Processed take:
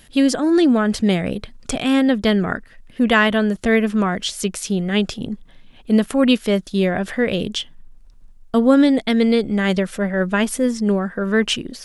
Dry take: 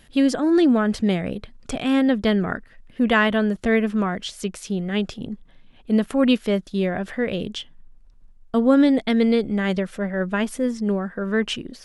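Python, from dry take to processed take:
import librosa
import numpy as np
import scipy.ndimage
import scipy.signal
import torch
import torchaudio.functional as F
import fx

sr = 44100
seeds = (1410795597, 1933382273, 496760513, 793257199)

p1 = fx.high_shelf(x, sr, hz=4300.0, db=7.0)
p2 = fx.rider(p1, sr, range_db=3, speed_s=0.5)
p3 = p1 + (p2 * librosa.db_to_amplitude(-2.0))
y = p3 * librosa.db_to_amplitude(-2.0)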